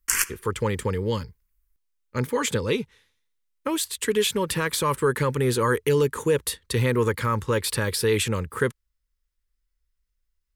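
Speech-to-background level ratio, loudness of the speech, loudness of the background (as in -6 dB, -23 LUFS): 0.0 dB, -25.0 LUFS, -25.0 LUFS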